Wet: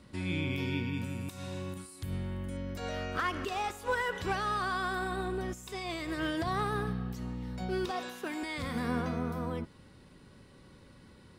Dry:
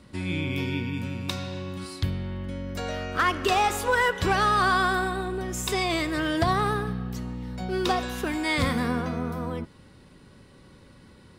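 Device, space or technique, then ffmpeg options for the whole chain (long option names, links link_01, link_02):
de-esser from a sidechain: -filter_complex "[0:a]asettb=1/sr,asplit=3[link_01][link_02][link_03];[link_01]atrim=end=1.044[link_04];[link_02]atrim=start=1.04:end=2.57,asetpts=PTS-STARTPTS,afade=type=in:duration=0.004:curve=qsin,afade=type=out:start_time=1.526:duration=0.004:curve=qsin,highshelf=frequency=6500:width_type=q:width=1.5:gain=10[link_05];[link_03]atrim=start=2.566[link_06];[link_04][link_05]acrossfade=duration=0.004:curve1=hsin:curve2=qsin[link_07];[link_07][link_06]acrossfade=duration=0.004:curve1=qsin:curve2=hsin,asettb=1/sr,asplit=3[link_08][link_09][link_10];[link_08]atrim=end=7.914[link_11];[link_09]atrim=start=7.91:end=8.43,asetpts=PTS-STARTPTS,afade=type=in:duration=0.004:curve=qsin,afade=type=out:start_time=0.516:duration=0.004:curve=qsin,highpass=260[link_12];[link_10]atrim=start=8.426[link_13];[link_11][link_12]acrossfade=duration=0.004:curve1=hsin:curve2=qsin[link_14];[link_14][link_13]acrossfade=duration=0.004:curve1=qsin:curve2=hsin,asplit=2[link_15][link_16];[link_16]highpass=frequency=5400:width=0.5412,highpass=frequency=5400:width=1.3066,apad=whole_len=502092[link_17];[link_15][link_17]sidechaincompress=threshold=-49dB:ratio=3:attack=3.7:release=88,volume=-4dB"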